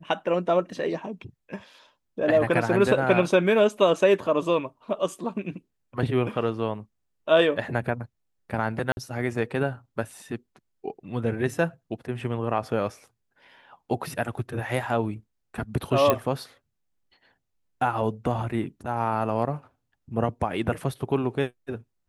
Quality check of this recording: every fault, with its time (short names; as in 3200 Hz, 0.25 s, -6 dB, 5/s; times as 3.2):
8.92–8.97 gap 51 ms
16.1 pop -7 dBFS